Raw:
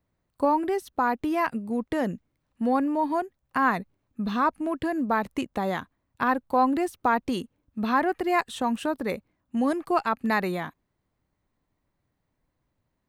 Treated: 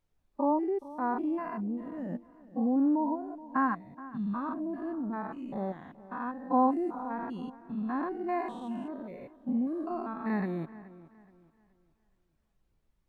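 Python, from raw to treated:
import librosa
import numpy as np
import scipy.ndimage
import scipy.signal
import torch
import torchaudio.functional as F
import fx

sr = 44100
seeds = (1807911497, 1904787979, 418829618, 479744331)

y = fx.spec_steps(x, sr, hold_ms=200)
y = fx.dmg_noise_colour(y, sr, seeds[0], colour='pink', level_db=-59.0)
y = fx.low_shelf(y, sr, hz=70.0, db=5.5)
y = fx.echo_wet_lowpass(y, sr, ms=424, feedback_pct=47, hz=3600.0, wet_db=-12.0)
y = fx.spectral_expand(y, sr, expansion=1.5)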